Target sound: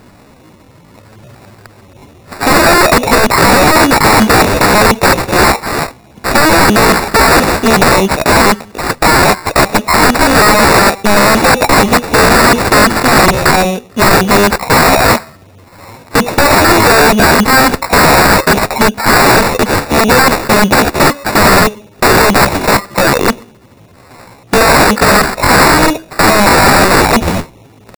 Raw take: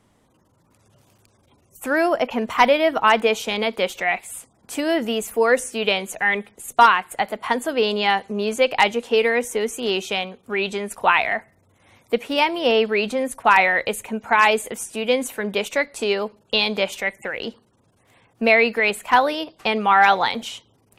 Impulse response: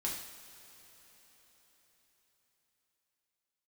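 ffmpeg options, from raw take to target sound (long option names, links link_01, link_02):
-af "apsyclip=18.5dB,acrusher=samples=14:mix=1:aa=0.000001,aeval=exprs='(mod(1.58*val(0)+1,2)-1)/1.58':channel_layout=same,atempo=0.75,volume=2.5dB"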